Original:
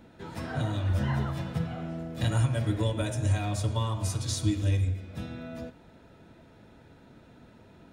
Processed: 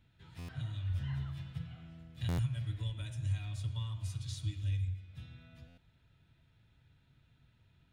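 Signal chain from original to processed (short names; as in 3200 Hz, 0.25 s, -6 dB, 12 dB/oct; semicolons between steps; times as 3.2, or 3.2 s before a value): EQ curve 140 Hz 0 dB, 200 Hz -14 dB, 540 Hz -19 dB, 880 Hz -14 dB, 1700 Hz -7 dB, 3200 Hz 0 dB, 5700 Hz -8 dB; stuck buffer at 0.38/2.28/5.67, samples 512, times 8; gain -8 dB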